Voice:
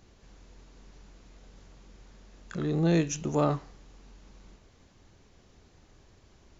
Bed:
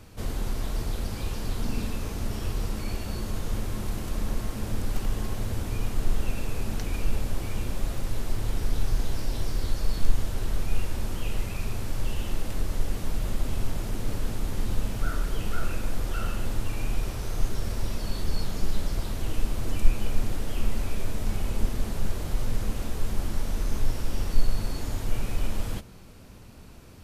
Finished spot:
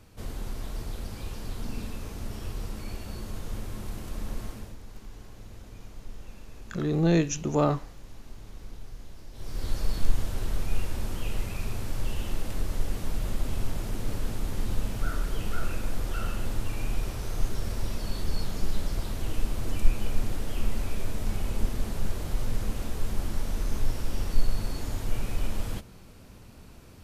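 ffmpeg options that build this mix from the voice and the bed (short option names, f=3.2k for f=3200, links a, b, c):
-filter_complex "[0:a]adelay=4200,volume=2dB[a];[1:a]volume=10.5dB,afade=t=out:st=4.46:d=0.31:silence=0.251189,afade=t=in:st=9.33:d=0.41:silence=0.158489[b];[a][b]amix=inputs=2:normalize=0"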